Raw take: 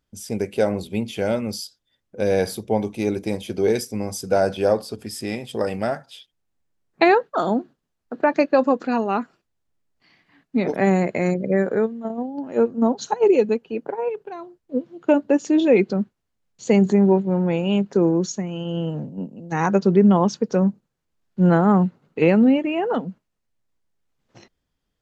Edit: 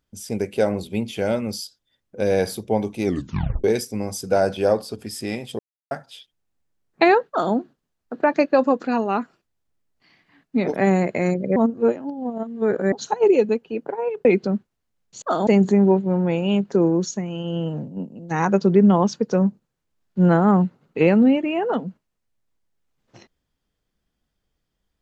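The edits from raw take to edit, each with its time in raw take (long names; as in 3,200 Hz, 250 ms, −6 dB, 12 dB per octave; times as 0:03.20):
0:03.04: tape stop 0.60 s
0:05.59–0:05.91: silence
0:07.29–0:07.54: duplicate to 0:16.68
0:11.56–0:12.92: reverse
0:14.25–0:15.71: remove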